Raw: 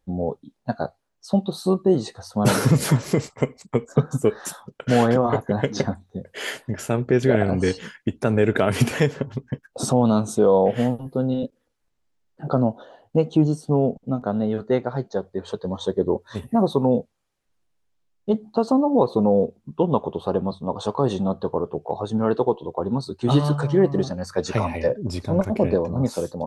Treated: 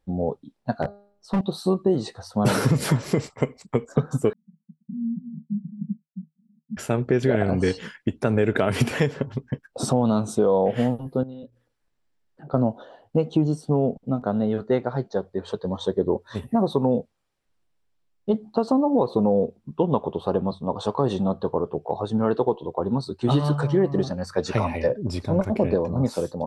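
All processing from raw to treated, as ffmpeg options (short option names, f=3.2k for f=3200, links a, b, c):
-filter_complex "[0:a]asettb=1/sr,asplit=3[a][b][c];[a]atrim=end=0.824[d];[b]atrim=start=0.82:end=1.41,asetpts=PTS-STARTPTS,afade=t=in:d=0.004:c=qsin,afade=t=out:st=0.586:d=0.004:c=qsin,tiltshelf=f=1.1k:g=6,bandreject=f=202.6:t=h:w=4,bandreject=f=405.2:t=h:w=4,bandreject=f=607.8:t=h:w=4,bandreject=f=810.4:t=h:w=4,bandreject=f=1.013k:t=h:w=4,bandreject=f=1.2156k:t=h:w=4,bandreject=f=1.4182k:t=h:w=4,bandreject=f=1.6208k:t=h:w=4,bandreject=f=1.8234k:t=h:w=4,bandreject=f=2.026k:t=h:w=4,bandreject=f=2.2286k:t=h:w=4,bandreject=f=2.4312k:t=h:w=4,bandreject=f=2.6338k:t=h:w=4,bandreject=f=2.8364k:t=h:w=4,bandreject=f=3.039k:t=h:w=4,bandreject=f=3.2416k:t=h:w=4,bandreject=f=3.4442k:t=h:w=4,bandreject=f=3.6468k:t=h:w=4,bandreject=f=3.8494k:t=h:w=4,bandreject=f=4.052k:t=h:w=4,bandreject=f=4.2546k:t=h:w=4,bandreject=f=4.4572k:t=h:w=4,bandreject=f=4.6598k:t=h:w=4,bandreject=f=4.8624k:t=h:w=4,bandreject=f=5.065k:t=h:w=4,bandreject=f=5.2676k:t=h:w=4,bandreject=f=5.4702k:t=h:w=4,bandreject=f=5.6728k:t=h:w=4,asoftclip=type=hard:threshold=-18dB[e];[c]atrim=start=1.406[f];[d][e]acrossfade=d=0.004:c1=hsin:c2=qsin[g];[g][f]acrossfade=d=0.004:c1=qsin:c2=hsin,asettb=1/sr,asplit=3[h][i][j];[h]atrim=end=4.334[k];[i]atrim=start=4.33:end=6.77,asetpts=PTS-STARTPTS,afade=t=in:d=0.004:c=qsin,afade=t=out:st=2.436:d=0.004:c=qsin,aeval=exprs='sgn(val(0))*max(abs(val(0))-0.00794,0)':c=same,asuperpass=centerf=190:order=12:qfactor=2.5[l];[j]atrim=start=6.766[m];[k][l]acrossfade=d=0.004:c1=hsin:c2=qsin[n];[n][m]acrossfade=d=0.004:c1=qsin:c2=hsin,asettb=1/sr,asplit=3[o][p][q];[o]atrim=end=11.234[r];[p]atrim=start=11.23:end=12.54,asetpts=PTS-STARTPTS,afade=t=in:d=0.004:c=qsin,afade=t=out:st=1.306:d=0.004:c=qsin,equalizer=f=1.7k:t=o:w=0.22:g=3.5,bandreject=f=60:t=h:w=6,bandreject=f=120:t=h:w=6,acompressor=threshold=-48dB:ratio=2:attack=3.2:release=140:knee=1:detection=peak[s];[q]atrim=start=12.536[t];[r][s]acrossfade=d=0.004:c1=hsin:c2=qsin[u];[u][t]acrossfade=d=0.004:c1=qsin:c2=hsin,highshelf=f=10k:g=-7,bandreject=f=6.5k:w=14,acompressor=threshold=-15dB:ratio=6"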